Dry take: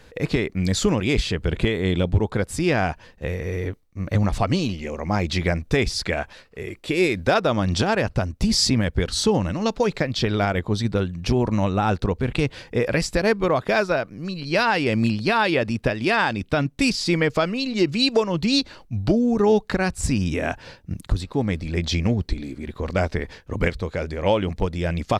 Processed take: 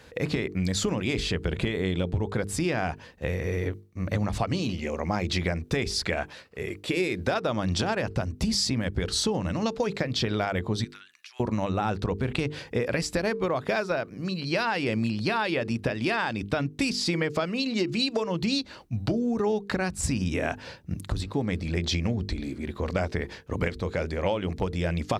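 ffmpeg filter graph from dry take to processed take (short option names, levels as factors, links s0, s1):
-filter_complex "[0:a]asettb=1/sr,asplit=3[s0][s1][s2];[s0]atrim=end=10.844[s3];[s1]atrim=start=10.84:end=11.4,asetpts=PTS-STARTPTS,afade=t=in:d=0.004:c=qsin,afade=t=out:st=0.556:d=0.004:c=qsin,highpass=f=1400:w=0.5412,highpass=f=1400:w=1.3066,acompressor=threshold=0.00708:ratio=12:attack=3.2:release=140:knee=1:detection=peak[s4];[s2]atrim=start=11.396[s5];[s3][s4]acrossfade=d=0.004:c1=hsin:c2=qsin[s6];[s6][s5]acrossfade=d=0.004:c1=qsin:c2=hsin,highpass=55,bandreject=f=50:t=h:w=6,bandreject=f=100:t=h:w=6,bandreject=f=150:t=h:w=6,bandreject=f=200:t=h:w=6,bandreject=f=250:t=h:w=6,bandreject=f=300:t=h:w=6,bandreject=f=350:t=h:w=6,bandreject=f=400:t=h:w=6,bandreject=f=450:t=h:w=6,acompressor=threshold=0.0708:ratio=6"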